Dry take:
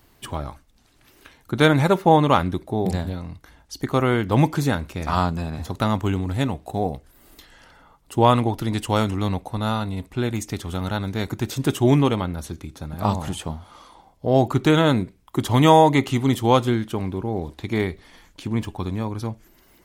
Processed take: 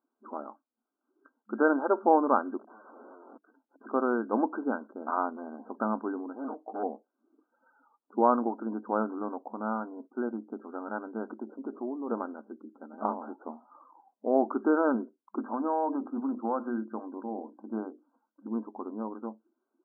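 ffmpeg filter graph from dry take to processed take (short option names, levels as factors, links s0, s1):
-filter_complex "[0:a]asettb=1/sr,asplit=3[s0][s1][s2];[s0]atrim=end=2.594[s3];[s1]atrim=start=2.59:end=3.86,asetpts=PTS-STARTPTS,afade=t=in:d=0.004:c=qsin,afade=t=out:st=1.266:d=0.004:c=qsin,lowshelf=f=300:g=9,acompressor=threshold=0.0141:ratio=2.5:attack=3.2:release=140:knee=1:detection=peak,aeval=exprs='(mod(66.8*val(0)+1,2)-1)/66.8':c=same[s4];[s2]atrim=start=3.856[s5];[s3][s4]acrossfade=d=0.004:c1=hsin:c2=qsin[s6];[s6][s5]acrossfade=d=0.004:c1=qsin:c2=hsin,asettb=1/sr,asplit=3[s7][s8][s9];[s7]atrim=end=6.364[s10];[s8]atrim=start=6.36:end=6.83,asetpts=PTS-STARTPTS,afade=t=in:d=0.004:c=qsin,afade=t=out:st=0.466:d=0.004:c=qsin,aecho=1:1:6.5:0.58,atrim=end_sample=20727,volume=12.6,asoftclip=hard,volume=0.0794[s11];[s9]atrim=start=6.826[s12];[s10][s11]acrossfade=d=0.004:c1=hsin:c2=qsin[s13];[s13][s12]acrossfade=d=0.004:c1=qsin:c2=hsin,asettb=1/sr,asplit=3[s14][s15][s16];[s14]atrim=end=11.314[s17];[s15]atrim=start=11.31:end=12.1,asetpts=PTS-STARTPTS,afade=t=in:d=0.004:c=qsin,afade=t=out:st=0.786:d=0.004:c=qsin,lowpass=1200,acompressor=threshold=0.0794:ratio=16:attack=3.2:release=140:knee=1:detection=peak[s18];[s16]atrim=start=12.096[s19];[s17][s18]acrossfade=d=0.004:c1=hsin:c2=qsin[s20];[s20][s19]acrossfade=d=0.004:c1=qsin:c2=hsin,asettb=1/sr,asplit=3[s21][s22][s23];[s21]atrim=end=15.384[s24];[s22]atrim=start=15.38:end=18.48,asetpts=PTS-STARTPTS,afade=t=in:d=0.004:c=qsin,afade=t=out:st=3.096:d=0.004:c=qsin,bandreject=f=50:t=h:w=6,bandreject=f=100:t=h:w=6,bandreject=f=150:t=h:w=6,bandreject=f=200:t=h:w=6,bandreject=f=250:t=h:w=6,bandreject=f=300:t=h:w=6,bandreject=f=350:t=h:w=6,bandreject=f=400:t=h:w=6,bandreject=f=450:t=h:w=6,acompressor=threshold=0.158:ratio=10:attack=3.2:release=140:knee=1:detection=peak,equalizer=f=400:w=7.3:g=-12[s25];[s23]atrim=start=18.476[s26];[s24][s25]acrossfade=d=0.004:c1=hsin:c2=qsin[s27];[s27][s26]acrossfade=d=0.004:c1=qsin:c2=hsin,afftfilt=real='re*between(b*sr/4096,210,1600)':imag='im*between(b*sr/4096,210,1600)':win_size=4096:overlap=0.75,afftdn=nr=17:nf=-44,volume=0.473"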